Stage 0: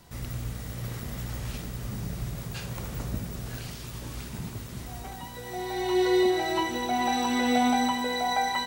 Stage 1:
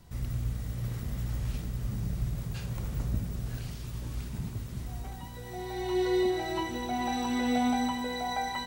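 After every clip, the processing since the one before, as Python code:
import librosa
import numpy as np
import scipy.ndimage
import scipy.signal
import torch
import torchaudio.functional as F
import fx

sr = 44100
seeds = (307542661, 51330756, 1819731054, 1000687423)

y = fx.low_shelf(x, sr, hz=180.0, db=11.5)
y = y * 10.0 ** (-6.5 / 20.0)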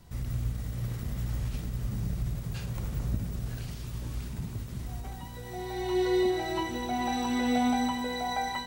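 y = fx.end_taper(x, sr, db_per_s=120.0)
y = y * 10.0 ** (1.0 / 20.0)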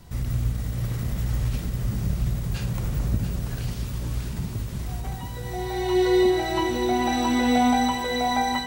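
y = x + 10.0 ** (-9.0 / 20.0) * np.pad(x, (int(686 * sr / 1000.0), 0))[:len(x)]
y = y * 10.0 ** (6.5 / 20.0)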